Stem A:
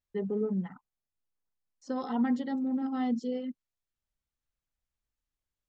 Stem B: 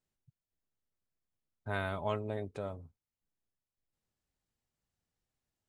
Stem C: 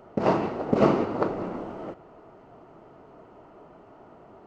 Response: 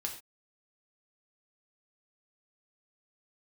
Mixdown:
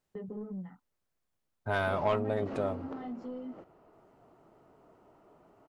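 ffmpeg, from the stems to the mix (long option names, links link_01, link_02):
-filter_complex "[0:a]lowpass=frequency=1800:poles=1,agate=range=-15dB:threshold=-42dB:ratio=16:detection=peak,flanger=delay=15.5:depth=7.2:speed=0.6,volume=1.5dB[link_01];[1:a]equalizer=frequency=800:width_type=o:width=2.5:gain=5.5,acontrast=55,asoftclip=type=tanh:threshold=-16.5dB,volume=-2.5dB[link_02];[2:a]adelay=1700,volume=-11dB[link_03];[link_01][link_03]amix=inputs=2:normalize=0,asoftclip=type=tanh:threshold=-25.5dB,acompressor=threshold=-40dB:ratio=3,volume=0dB[link_04];[link_02][link_04]amix=inputs=2:normalize=0"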